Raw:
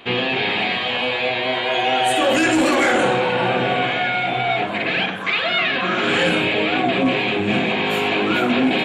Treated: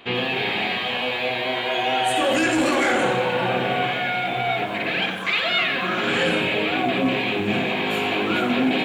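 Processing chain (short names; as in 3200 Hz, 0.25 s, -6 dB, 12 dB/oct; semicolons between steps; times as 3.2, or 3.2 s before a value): 5.02–5.64 high shelf 4800 Hz +9 dB; lo-fi delay 89 ms, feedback 55%, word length 7-bit, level -11.5 dB; gain -3.5 dB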